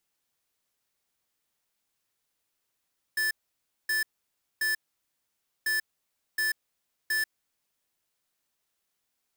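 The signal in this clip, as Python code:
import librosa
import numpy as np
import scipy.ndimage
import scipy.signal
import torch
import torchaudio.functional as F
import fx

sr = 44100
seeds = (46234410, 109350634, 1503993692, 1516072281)

y = fx.beep_pattern(sr, wave='square', hz=1750.0, on_s=0.14, off_s=0.58, beeps=3, pause_s=0.91, groups=2, level_db=-27.0)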